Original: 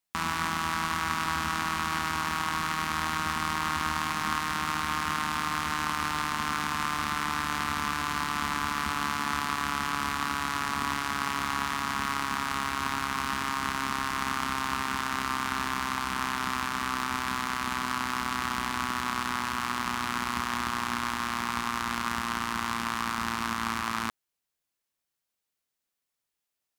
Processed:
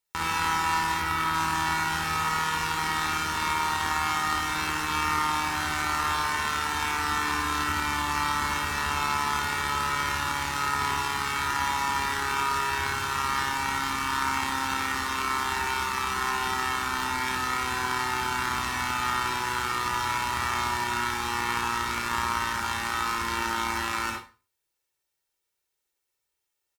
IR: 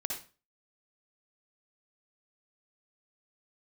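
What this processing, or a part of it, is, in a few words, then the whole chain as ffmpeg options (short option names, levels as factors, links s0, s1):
microphone above a desk: -filter_complex "[0:a]asettb=1/sr,asplit=3[s0][s1][s2];[s0]atrim=end=0.944[s3];[s1]atrim=start=0.94:end=1.34,asetpts=PTS-STARTPTS,afade=t=in:d=0.004:c=qsin,afade=t=out:st=0.396:d=0.004:c=qsin,equalizer=f=6900:t=o:w=1:g=-6[s4];[s2]atrim=start=1.336[s5];[s3][s4]acrossfade=d=0.004:c1=hsin:c2=qsin[s6];[s6][s5]acrossfade=d=0.004:c1=qsin:c2=hsin,aecho=1:1:2.2:0.64[s7];[1:a]atrim=start_sample=2205[s8];[s7][s8]afir=irnorm=-1:irlink=0"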